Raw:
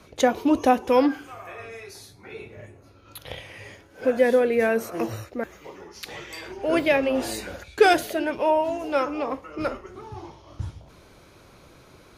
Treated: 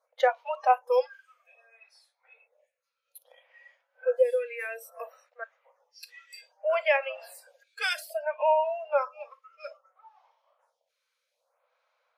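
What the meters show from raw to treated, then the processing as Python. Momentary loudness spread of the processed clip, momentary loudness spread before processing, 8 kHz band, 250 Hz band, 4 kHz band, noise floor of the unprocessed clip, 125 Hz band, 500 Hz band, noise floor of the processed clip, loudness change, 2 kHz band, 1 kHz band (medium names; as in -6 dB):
21 LU, 21 LU, -11.5 dB, under -40 dB, -6.0 dB, -52 dBFS, under -40 dB, -5.5 dB, -82 dBFS, -5.0 dB, -5.0 dB, -3.5 dB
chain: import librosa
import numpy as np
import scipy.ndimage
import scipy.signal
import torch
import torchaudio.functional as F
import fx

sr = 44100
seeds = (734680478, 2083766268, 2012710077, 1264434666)

y = fx.noise_reduce_blind(x, sr, reduce_db=18)
y = fx.brickwall_highpass(y, sr, low_hz=470.0)
y = fx.high_shelf(y, sr, hz=5900.0, db=-7.0)
y = fx.stagger_phaser(y, sr, hz=0.61)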